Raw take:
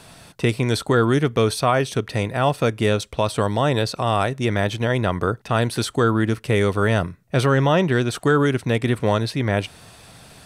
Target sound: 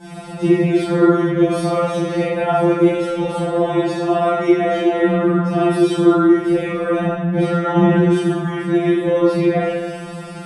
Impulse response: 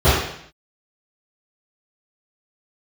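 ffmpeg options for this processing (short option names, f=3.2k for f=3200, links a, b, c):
-filter_complex "[0:a]acompressor=threshold=-28dB:ratio=6[a];[1:a]atrim=start_sample=2205,asetrate=23373,aresample=44100[b];[a][b]afir=irnorm=-1:irlink=0,afftfilt=real='re*2.83*eq(mod(b,8),0)':imag='im*2.83*eq(mod(b,8),0)':win_size=2048:overlap=0.75,volume=-12.5dB"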